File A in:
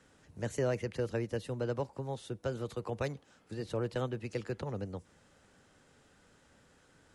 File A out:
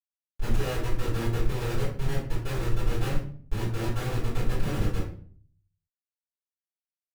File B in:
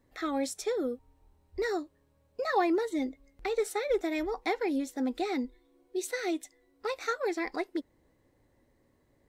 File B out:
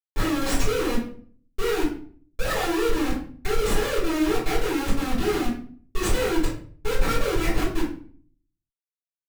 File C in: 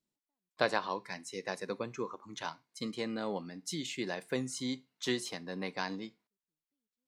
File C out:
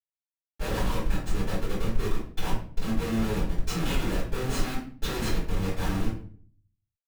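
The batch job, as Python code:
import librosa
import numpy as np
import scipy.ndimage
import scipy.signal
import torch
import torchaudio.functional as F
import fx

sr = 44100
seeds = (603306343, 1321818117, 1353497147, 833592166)

y = fx.schmitt(x, sr, flips_db=-38.0)
y = fx.room_shoebox(y, sr, seeds[0], volume_m3=46.0, walls='mixed', distance_m=3.2)
y = F.gain(torch.from_numpy(y), -5.5).numpy()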